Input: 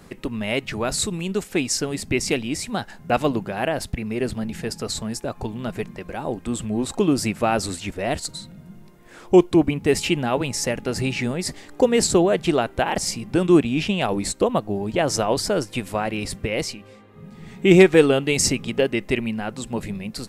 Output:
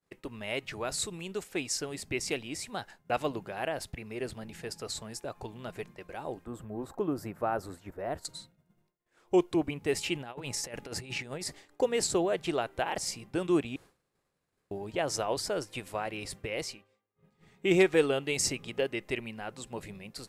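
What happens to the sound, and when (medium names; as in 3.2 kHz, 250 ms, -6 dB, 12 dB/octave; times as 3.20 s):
6.45–8.25 s: high-order bell 4.7 kHz -15 dB 2.5 oct
10.15–11.44 s: compressor with a negative ratio -27 dBFS, ratio -0.5
13.76–14.71 s: room tone
whole clip: peaking EQ 220 Hz -7.5 dB 0.73 oct; expander -35 dBFS; bass shelf 92 Hz -8.5 dB; trim -9 dB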